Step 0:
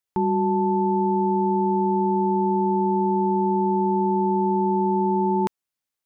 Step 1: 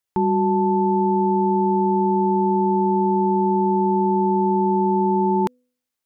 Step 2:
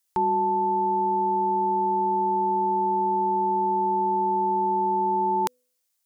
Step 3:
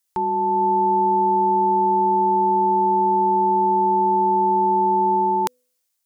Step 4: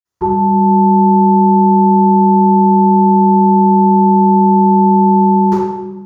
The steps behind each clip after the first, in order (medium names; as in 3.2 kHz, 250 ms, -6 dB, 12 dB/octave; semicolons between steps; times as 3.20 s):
de-hum 249.1 Hz, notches 2; trim +2.5 dB
peaking EQ 260 Hz -13.5 dB 0.94 oct; gain riding; tone controls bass -8 dB, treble +10 dB
level rider gain up to 5.5 dB
reverberation RT60 1.1 s, pre-delay 47 ms; trim -9.5 dB